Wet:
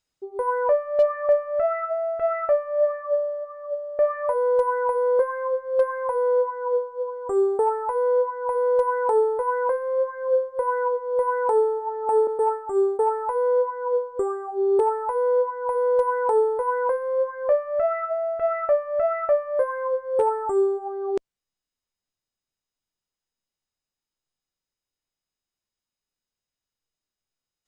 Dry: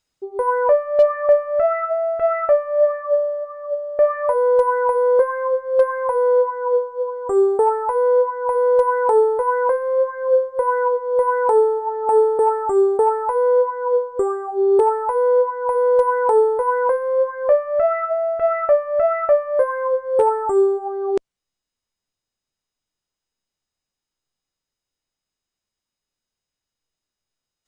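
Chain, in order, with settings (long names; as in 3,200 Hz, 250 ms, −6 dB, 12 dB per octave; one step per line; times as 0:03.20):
0:12.27–0:13.00: downward expander −16 dBFS
level −5 dB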